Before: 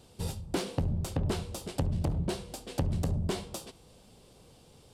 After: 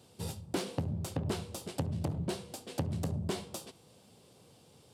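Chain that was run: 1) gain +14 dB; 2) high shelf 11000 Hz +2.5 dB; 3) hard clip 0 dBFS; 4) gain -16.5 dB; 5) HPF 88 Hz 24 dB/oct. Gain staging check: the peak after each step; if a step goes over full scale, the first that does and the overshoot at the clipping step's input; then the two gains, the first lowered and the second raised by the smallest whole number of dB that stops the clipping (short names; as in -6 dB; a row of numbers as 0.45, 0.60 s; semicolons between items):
-5.0, -5.0, -5.0, -21.5, -19.5 dBFS; no overload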